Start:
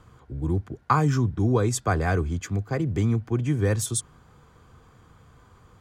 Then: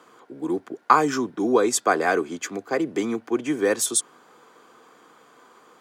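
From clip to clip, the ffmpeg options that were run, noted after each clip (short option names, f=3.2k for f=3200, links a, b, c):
-af "highpass=f=280:w=0.5412,highpass=f=280:w=1.3066,volume=6dB"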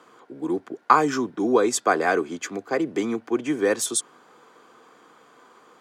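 -af "highshelf=f=10k:g=-7"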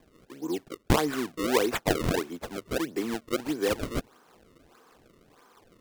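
-af "acrusher=samples=31:mix=1:aa=0.000001:lfo=1:lforange=49.6:lforate=1.6,volume=-5.5dB"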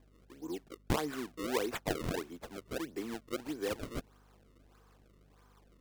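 -af "aeval=exprs='val(0)+0.002*(sin(2*PI*50*n/s)+sin(2*PI*2*50*n/s)/2+sin(2*PI*3*50*n/s)/3+sin(2*PI*4*50*n/s)/4+sin(2*PI*5*50*n/s)/5)':c=same,volume=-9dB"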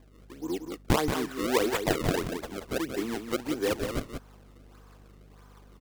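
-af "aecho=1:1:180:0.447,volume=7.5dB"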